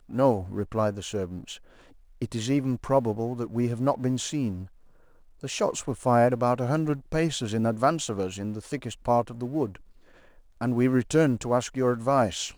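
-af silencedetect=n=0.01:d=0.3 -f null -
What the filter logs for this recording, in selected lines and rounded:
silence_start: 1.56
silence_end: 2.22 | silence_duration: 0.65
silence_start: 4.66
silence_end: 5.41 | silence_duration: 0.75
silence_start: 9.76
silence_end: 10.61 | silence_duration: 0.86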